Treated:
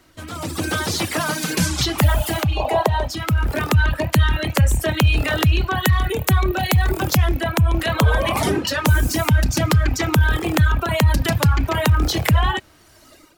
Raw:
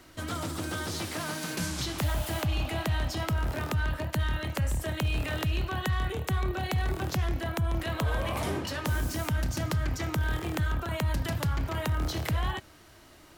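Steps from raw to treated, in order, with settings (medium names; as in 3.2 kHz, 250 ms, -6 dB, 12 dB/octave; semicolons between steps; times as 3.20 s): rattle on loud lows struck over -38 dBFS, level -40 dBFS; 2.57–3.07 s: time-frequency box 360–1100 Hz +12 dB; reverb removal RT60 1.7 s; 5.78–7.37 s: treble shelf 11 kHz +10.5 dB; level rider gain up to 15.5 dB; trim -1 dB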